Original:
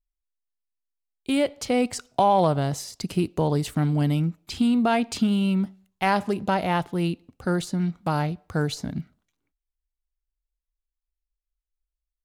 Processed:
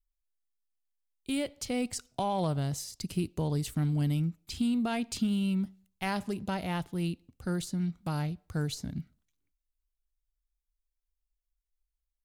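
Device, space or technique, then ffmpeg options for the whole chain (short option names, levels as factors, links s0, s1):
smiley-face EQ: -af "lowshelf=f=89:g=8.5,equalizer=f=790:t=o:w=2.6:g=-6.5,highshelf=f=6200:g=5.5,volume=0.473"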